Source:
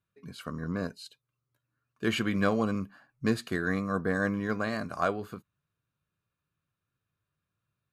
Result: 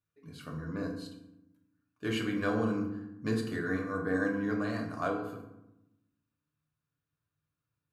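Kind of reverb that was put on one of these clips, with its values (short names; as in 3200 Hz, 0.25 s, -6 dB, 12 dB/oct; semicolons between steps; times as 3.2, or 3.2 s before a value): FDN reverb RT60 0.88 s, low-frequency decay 1.5×, high-frequency decay 0.55×, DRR -0.5 dB; gain -7.5 dB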